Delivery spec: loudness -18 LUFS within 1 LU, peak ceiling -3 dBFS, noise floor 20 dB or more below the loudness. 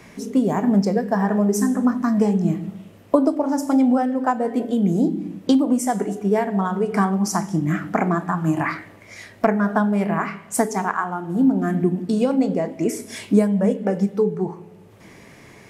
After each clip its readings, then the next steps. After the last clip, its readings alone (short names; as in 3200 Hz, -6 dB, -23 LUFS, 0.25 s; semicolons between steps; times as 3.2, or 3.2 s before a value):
loudness -21.0 LUFS; peak -3.0 dBFS; loudness target -18.0 LUFS
-> gain +3 dB; limiter -3 dBFS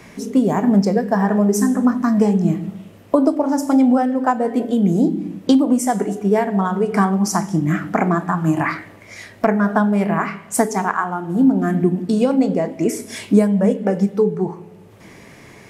loudness -18.0 LUFS; peak -3.0 dBFS; noise floor -44 dBFS